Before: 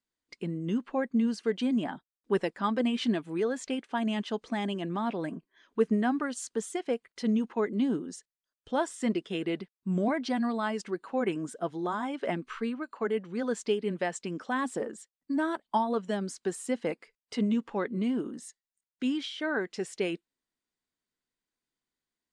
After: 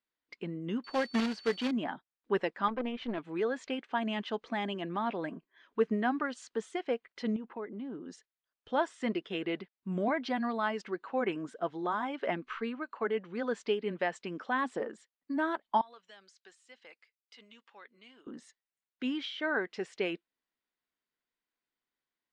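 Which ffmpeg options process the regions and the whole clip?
-filter_complex "[0:a]asettb=1/sr,asplit=3[a][b][c];[a]atrim=end=0.844[d];[b]atrim=start=0.84:end=1.71,asetpts=PTS-STARTPTS,afade=t=in:d=0.004:c=qsin,afade=t=out:st=0.866:d=0.004:c=qsin,aeval=exprs='val(0)+0.00501*sin(2*PI*4500*n/s)':c=same,acrusher=bits=2:mode=log:mix=0:aa=0.000001[e];[c]atrim=start=1.706[f];[d][e]acrossfade=d=0.004:c1=hsin:c2=qsin[g];[g][f]acrossfade=d=0.004:c1=qsin:c2=hsin,asettb=1/sr,asplit=3[h][i][j];[h]atrim=end=2.684[k];[i]atrim=start=2.68:end=3.18,asetpts=PTS-STARTPTS,afade=t=in:d=0.004:c=qsin,afade=t=out:st=0.496:d=0.004:c=qsin,lowpass=f=2k:p=1,aeval=exprs='(tanh(14.1*val(0)+0.75)-tanh(0.75))/14.1':c=same[l];[j]atrim=start=3.176[m];[k][l]acrossfade=d=0.004:c1=hsin:c2=qsin[n];[n][m]acrossfade=d=0.004:c1=qsin:c2=hsin,asettb=1/sr,asplit=3[o][p][q];[o]atrim=end=7.364[r];[p]atrim=start=7.36:end=8.06,asetpts=PTS-STARTPTS,afade=t=in:d=0.004:c=qsin,afade=t=out:st=0.696:d=0.004:c=qsin,lowpass=f=1.5k:p=1,acompressor=threshold=-37dB:ratio=2.5:attack=3.2:release=140:knee=1:detection=peak[s];[q]atrim=start=8.056[t];[r][s]acrossfade=d=0.004:c1=hsin:c2=qsin[u];[u][t]acrossfade=d=0.004:c1=qsin:c2=hsin,asettb=1/sr,asplit=3[v][w][x];[v]atrim=end=15.814[y];[w]atrim=start=15.81:end=18.27,asetpts=PTS-STARTPTS,afade=t=in:d=0.004:c=qsin,afade=t=out:st=2.456:d=0.004:c=qsin,aderivative,acompressor=threshold=-47dB:ratio=2.5:attack=3.2:release=140:knee=1:detection=peak,lowpass=6.7k[z];[x]atrim=start=18.266[aa];[y][z]acrossfade=d=0.004:c1=hsin:c2=qsin[ab];[ab][aa]acrossfade=d=0.004:c1=qsin:c2=hsin,lowpass=3.4k,lowshelf=f=350:g=-9.5,volume=1.5dB"

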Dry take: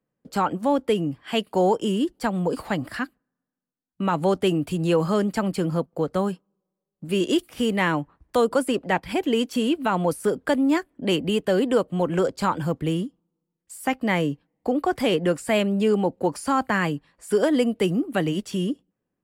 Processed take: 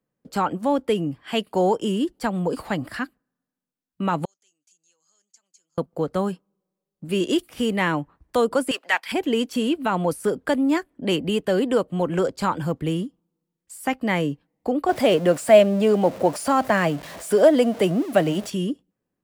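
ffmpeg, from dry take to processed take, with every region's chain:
-filter_complex "[0:a]asettb=1/sr,asplit=3[a][b][c];[a]atrim=end=4.254[d];[b]atrim=start=4.25:end=5.78,asetpts=PTS-STARTPTS,afade=t=in:d=0.004:c=qsin,afade=t=out:st=1.526:d=0.004:c=qsin,acompressor=threshold=-31dB:ratio=2:attack=3.2:release=140:knee=1:detection=peak,bandpass=f=6.5k:t=q:w=15[e];[c]atrim=start=5.776[f];[d][e]acrossfade=d=0.004:c1=hsin:c2=qsin[g];[g][f]acrossfade=d=0.004:c1=qsin:c2=hsin,asettb=1/sr,asplit=3[h][i][j];[h]atrim=end=8.714[k];[i]atrim=start=8.71:end=9.12,asetpts=PTS-STARTPTS,afade=t=in:d=0.004:c=qsin,afade=t=out:st=0.406:d=0.004:c=qsin,highpass=1.4k,acontrast=90[l];[j]atrim=start=9.116[m];[k][l]acrossfade=d=0.004:c1=hsin:c2=qsin[n];[n][m]acrossfade=d=0.004:c1=qsin:c2=hsin,asettb=1/sr,asplit=3[o][p][q];[o]atrim=end=14.894[r];[p]atrim=start=14.89:end=18.5,asetpts=PTS-STARTPTS,afade=t=in:d=0.004:c=qsin,afade=t=out:st=3.606:d=0.004:c=qsin,aeval=exprs='val(0)+0.5*0.02*sgn(val(0))':c=same,highpass=76,equalizer=f=630:t=o:w=0.39:g=12[s];[q]atrim=start=18.496[t];[r][s]acrossfade=d=0.004:c1=hsin:c2=qsin[u];[u][t]acrossfade=d=0.004:c1=qsin:c2=hsin"

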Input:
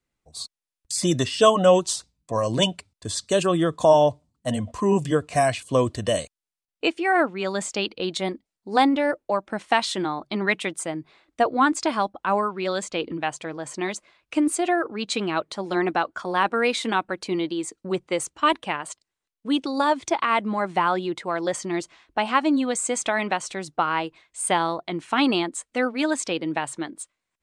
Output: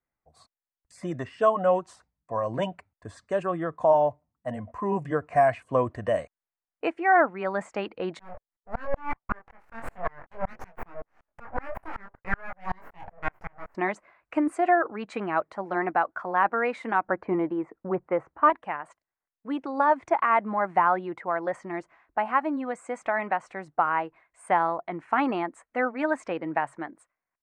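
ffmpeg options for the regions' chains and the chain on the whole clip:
-filter_complex "[0:a]asettb=1/sr,asplit=3[a][b][c];[a]atrim=end=8.194[d];[b]atrim=start=8.19:end=13.75,asetpts=PTS-STARTPTS,afade=t=in:d=0.004:c=qsin,afade=t=out:st=5.556:d=0.004:c=qsin,aeval=exprs='abs(val(0))':c=same,asplit=2[e][f];[f]adelay=22,volume=-6dB[g];[e][g]amix=inputs=2:normalize=0,atrim=end_sample=245196,aeval=exprs='val(0)*pow(10,-35*if(lt(mod(-5.3*n/s,1),2*abs(-5.3)/1000),1-mod(-5.3*n/s,1)/(2*abs(-5.3)/1000),(mod(-5.3*n/s,1)-2*abs(-5.3)/1000)/(1-2*abs(-5.3)/1000))/20)':c=same[h];[c]atrim=start=13.746[i];[d][h]acrossfade=d=0.004:c1=hsin:c2=qsin[j];[j][i]acrossfade=d=0.004:c1=qsin:c2=hsin,asettb=1/sr,asplit=3[k][l][m];[k]atrim=end=17.064[n];[l]atrim=start=17.06:end=18.5,asetpts=PTS-STARTPTS,afade=t=in:d=0.004:c=qsin,afade=t=out:st=1.436:d=0.004:c=qsin,lowpass=1.5k,acontrast=87[o];[m]atrim=start=18.496[p];[n][o]acrossfade=d=0.004:c1=hsin:c2=qsin[q];[q][p]acrossfade=d=0.004:c1=qsin:c2=hsin,firequalizer=gain_entry='entry(380,0);entry(710,8);entry(1100,6);entry(1900,5);entry(3400,-17)':delay=0.05:min_phase=1,dynaudnorm=f=110:g=17:m=11.5dB,volume=-9dB"

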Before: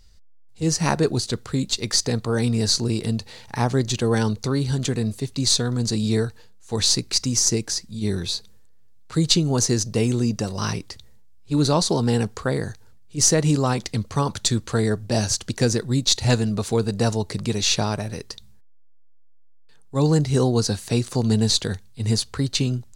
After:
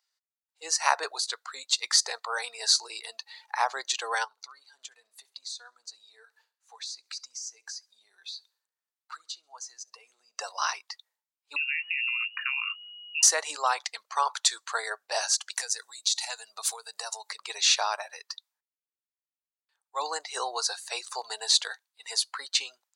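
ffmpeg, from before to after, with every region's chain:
-filter_complex "[0:a]asettb=1/sr,asplit=3[a][b][c];[a]atrim=end=4.244[d];[b]atrim=start=4.24:end=10.38,asetpts=PTS-STARTPTS,afade=t=in:d=0.004:c=qsin,afade=t=out:st=6.136:d=0.004:c=qsin,acompressor=threshold=-34dB:ratio=5:attack=3.2:release=140:knee=1:detection=peak,aecho=1:1:68|136|204|272:0.141|0.0622|0.0273|0.012,atrim=end_sample=270774[e];[c]atrim=start=10.376[f];[d][e]acrossfade=d=0.004:c1=hsin:c2=qsin[g];[g][f]acrossfade=d=0.004:c1=qsin:c2=hsin,asettb=1/sr,asplit=3[h][i][j];[h]atrim=end=11.564[k];[i]atrim=start=11.56:end=13.23,asetpts=PTS-STARTPTS,afade=t=in:d=0.004:c=qsin,afade=t=out:st=1.666:d=0.004:c=qsin,acompressor=threshold=-26dB:ratio=12:attack=3.2:release=140:knee=1:detection=peak,lowpass=f=2.5k:t=q:w=0.5098,lowpass=f=2.5k:t=q:w=0.6013,lowpass=f=2.5k:t=q:w=0.9,lowpass=f=2.5k:t=q:w=2.563,afreqshift=-2900[l];[j]atrim=start=13.226[m];[k][l]acrossfade=d=0.004:c1=hsin:c2=qsin[n];[n][m]acrossfade=d=0.004:c1=qsin:c2=hsin,asettb=1/sr,asplit=3[o][p][q];[o]atrim=end=15.524[r];[p]atrim=start=15.52:end=17.3,asetpts=PTS-STARTPTS,afade=t=in:d=0.004:c=qsin,afade=t=out:st=1.776:d=0.004:c=qsin,acompressor=threshold=-25dB:ratio=16:attack=3.2:release=140:knee=1:detection=peak,highshelf=f=4.1k:g=10.5[s];[q]atrim=start=17.296[t];[r][s]acrossfade=d=0.004:c1=hsin:c2=qsin[u];[u][t]acrossfade=d=0.004:c1=qsin:c2=hsin,highpass=f=820:w=0.5412,highpass=f=820:w=1.3066,afftdn=nr=16:nf=-42,equalizer=f=6.3k:w=0.31:g=-5.5,volume=4dB"

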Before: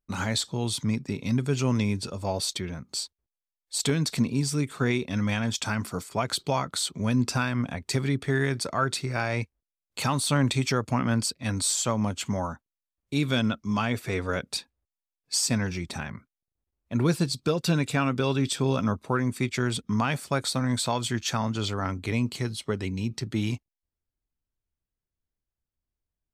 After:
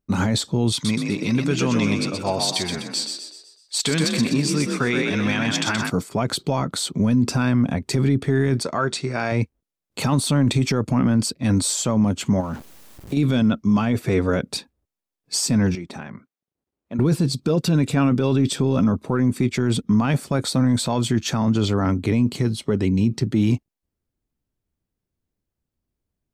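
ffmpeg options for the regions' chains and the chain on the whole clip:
-filter_complex "[0:a]asettb=1/sr,asplit=3[a][b][c];[a]atrim=end=0.724[d];[b]atrim=start=0.72:end=5.9,asetpts=PTS-STARTPTS,afade=t=in:d=0.004:c=qsin,afade=t=out:st=5.176:d=0.004:c=qsin,lowpass=f=3k:p=1,tiltshelf=f=840:g=-10,asplit=7[e][f][g][h][i][j][k];[f]adelay=125,afreqshift=44,volume=-5dB[l];[g]adelay=250,afreqshift=88,volume=-11.6dB[m];[h]adelay=375,afreqshift=132,volume=-18.1dB[n];[i]adelay=500,afreqshift=176,volume=-24.7dB[o];[j]adelay=625,afreqshift=220,volume=-31.2dB[p];[k]adelay=750,afreqshift=264,volume=-37.8dB[q];[e][l][m][n][o][p][q]amix=inputs=7:normalize=0,atrim=end_sample=228438[r];[c]atrim=start=5.896[s];[d][r]acrossfade=d=0.004:c1=hsin:c2=qsin[t];[t][s]acrossfade=d=0.004:c1=qsin:c2=hsin,asettb=1/sr,asplit=3[u][v][w];[u]atrim=end=8.634[x];[v]atrim=start=8.63:end=9.32,asetpts=PTS-STARTPTS,afade=t=in:d=0.004:c=qsin,afade=t=out:st=0.686:d=0.004:c=qsin,lowpass=f=9.2k:w=0.5412,lowpass=f=9.2k:w=1.3066,lowshelf=f=380:g=-9,asplit=2[y][z];[z]adelay=13,volume=-12dB[aa];[y][aa]amix=inputs=2:normalize=0,atrim=end_sample=30429[ab];[w]atrim=start=9.316[ac];[x][ab]acrossfade=d=0.004:c1=hsin:c2=qsin[ad];[ad][ac]acrossfade=d=0.004:c1=qsin:c2=hsin,asettb=1/sr,asplit=3[ae][af][ag];[ae]atrim=end=12.404[ah];[af]atrim=start=12.4:end=13.17,asetpts=PTS-STARTPTS,afade=t=in:d=0.004:c=qsin,afade=t=out:st=0.766:d=0.004:c=qsin,aeval=exprs='val(0)+0.5*0.00891*sgn(val(0))':c=same,acompressor=threshold=-32dB:ratio=6:attack=3.2:release=140:knee=1:detection=peak[ai];[ag]atrim=start=13.166[aj];[ah][ai]acrossfade=d=0.004:c1=hsin:c2=qsin[ak];[ak][aj]acrossfade=d=0.004:c1=qsin:c2=hsin,asettb=1/sr,asplit=3[al][am][an];[al]atrim=end=15.754[ao];[am]atrim=start=15.75:end=16.99,asetpts=PTS-STARTPTS,afade=t=in:d=0.004:c=qsin,afade=t=out:st=1.236:d=0.004:c=qsin,highshelf=f=4.8k:g=-8,acompressor=threshold=-43dB:ratio=1.5:attack=3.2:release=140:knee=1:detection=peak,highpass=f=350:p=1[ap];[an]atrim=start=16.986[aq];[ao][ap]acrossfade=d=0.004:c1=hsin:c2=qsin[ar];[ar][aq]acrossfade=d=0.004:c1=qsin:c2=hsin,equalizer=f=230:w=0.39:g=11,alimiter=limit=-13.5dB:level=0:latency=1:release=11,volume=2.5dB"

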